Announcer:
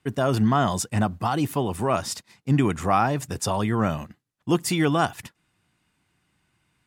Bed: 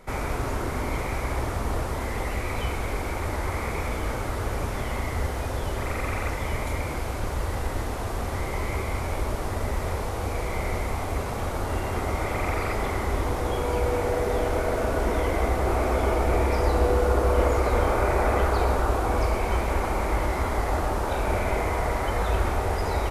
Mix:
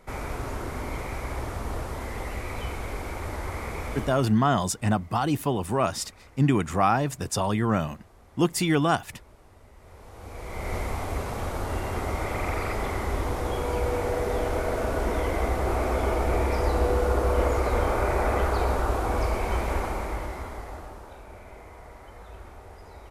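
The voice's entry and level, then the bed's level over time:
3.90 s, −1.0 dB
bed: 0:04.02 −4.5 dB
0:04.43 −25 dB
0:09.73 −25 dB
0:10.75 −2 dB
0:19.76 −2 dB
0:21.27 −20 dB

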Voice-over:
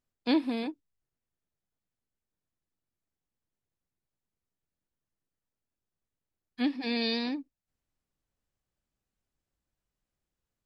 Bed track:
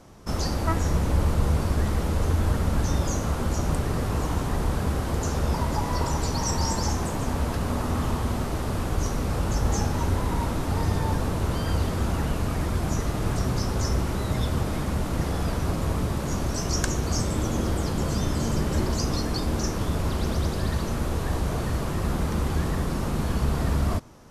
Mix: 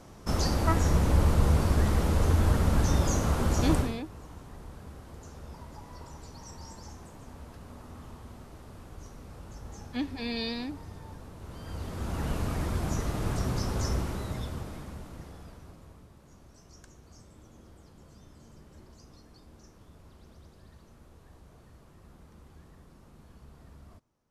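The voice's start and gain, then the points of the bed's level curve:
3.35 s, −3.5 dB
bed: 0:03.80 −0.5 dB
0:04.02 −20 dB
0:11.36 −20 dB
0:12.31 −4.5 dB
0:13.92 −4.5 dB
0:16.09 −28 dB

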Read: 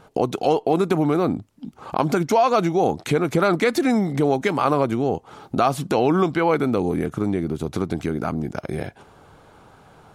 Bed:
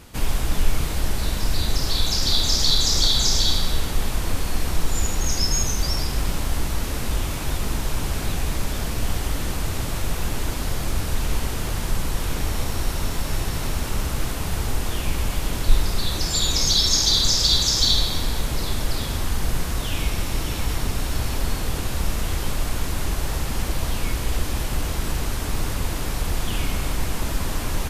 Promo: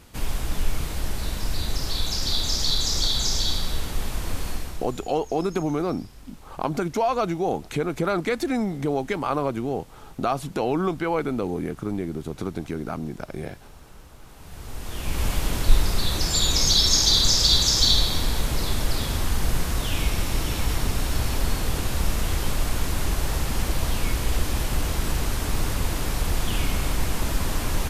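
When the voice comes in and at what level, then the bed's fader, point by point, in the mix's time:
4.65 s, −5.5 dB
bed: 0:04.50 −4.5 dB
0:05.14 −23 dB
0:14.22 −23 dB
0:15.25 0 dB

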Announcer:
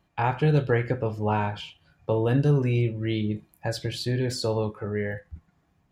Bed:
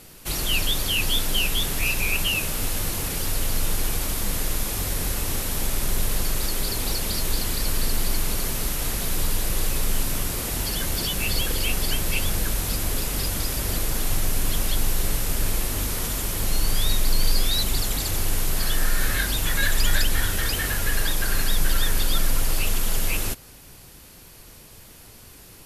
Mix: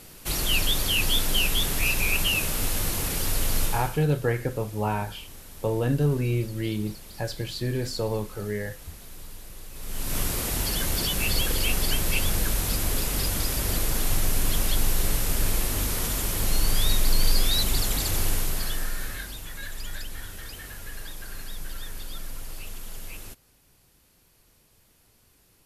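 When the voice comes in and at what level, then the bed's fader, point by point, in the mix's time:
3.55 s, −2.0 dB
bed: 0:03.64 −0.5 dB
0:04.07 −18.5 dB
0:09.70 −18.5 dB
0:10.18 −0.5 dB
0:18.26 −0.5 dB
0:19.47 −15 dB

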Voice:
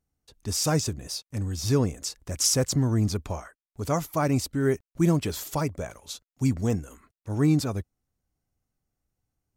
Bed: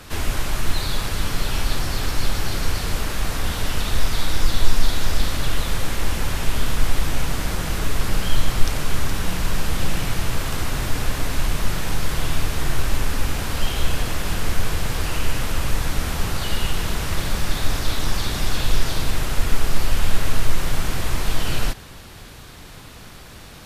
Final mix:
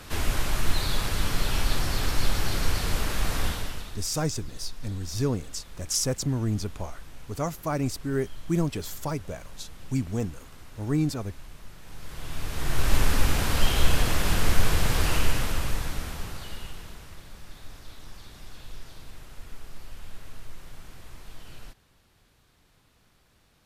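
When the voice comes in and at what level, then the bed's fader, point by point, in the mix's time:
3.50 s, −3.5 dB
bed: 0:03.45 −3 dB
0:04.11 −23.5 dB
0:11.78 −23.5 dB
0:12.95 0 dB
0:15.13 0 dB
0:17.23 −22.5 dB

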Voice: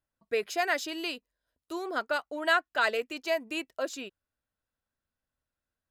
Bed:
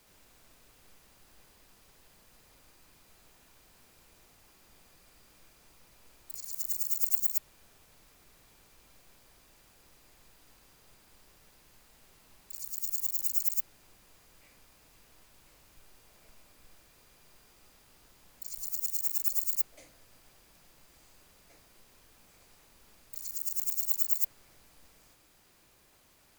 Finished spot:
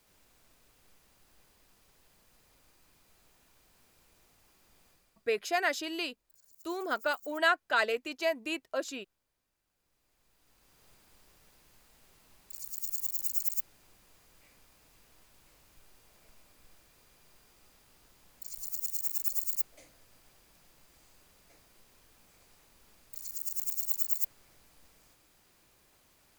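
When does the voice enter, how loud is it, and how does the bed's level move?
4.95 s, −1.0 dB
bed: 0:04.90 −4.5 dB
0:05.46 −22.5 dB
0:09.63 −22.5 dB
0:10.84 −2 dB

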